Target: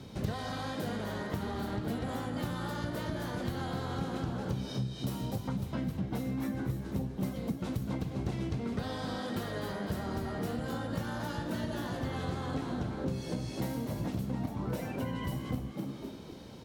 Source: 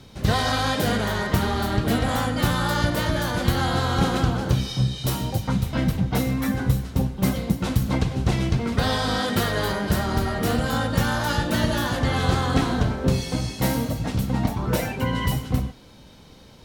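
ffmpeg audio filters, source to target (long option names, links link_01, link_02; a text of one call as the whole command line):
ffmpeg -i in.wav -filter_complex "[0:a]highpass=frequency=150:poles=1,asplit=2[link_01][link_02];[link_02]asplit=4[link_03][link_04][link_05][link_06];[link_03]adelay=250,afreqshift=71,volume=-10dB[link_07];[link_04]adelay=500,afreqshift=142,volume=-19.9dB[link_08];[link_05]adelay=750,afreqshift=213,volume=-29.8dB[link_09];[link_06]adelay=1000,afreqshift=284,volume=-39.7dB[link_10];[link_07][link_08][link_09][link_10]amix=inputs=4:normalize=0[link_11];[link_01][link_11]amix=inputs=2:normalize=0,acompressor=threshold=-35dB:ratio=6,tiltshelf=frequency=640:gain=4.5" out.wav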